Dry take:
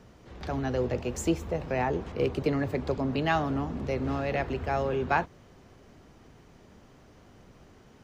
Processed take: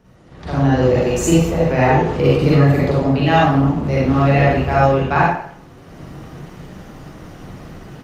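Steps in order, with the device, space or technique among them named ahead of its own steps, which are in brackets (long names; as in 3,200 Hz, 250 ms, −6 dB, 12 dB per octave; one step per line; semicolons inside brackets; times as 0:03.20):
speakerphone in a meeting room (convolution reverb RT60 0.60 s, pre-delay 40 ms, DRR −6.5 dB; automatic gain control gain up to 13 dB; level −1 dB; Opus 32 kbit/s 48,000 Hz)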